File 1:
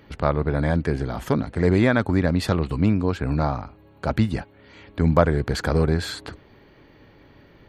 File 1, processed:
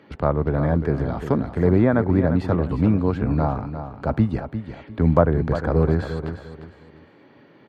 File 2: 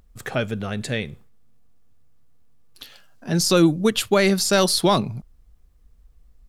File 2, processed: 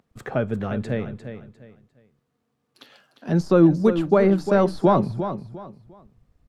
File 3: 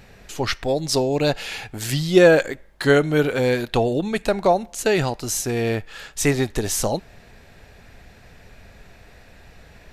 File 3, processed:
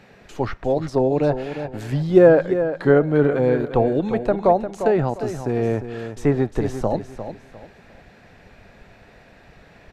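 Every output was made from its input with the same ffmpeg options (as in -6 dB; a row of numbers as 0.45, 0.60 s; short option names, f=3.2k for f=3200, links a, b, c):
-filter_complex "[0:a]lowpass=f=2.5k:p=1,acrossover=split=130|1500[a][b][c];[a]aeval=exprs='sgn(val(0))*max(abs(val(0))-0.00376,0)':c=same[d];[c]acompressor=threshold=-47dB:ratio=6[e];[d][b][e]amix=inputs=3:normalize=0,aecho=1:1:351|702|1053:0.316|0.0885|0.0248,volume=1.5dB"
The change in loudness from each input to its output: +1.0, -0.5, +1.0 LU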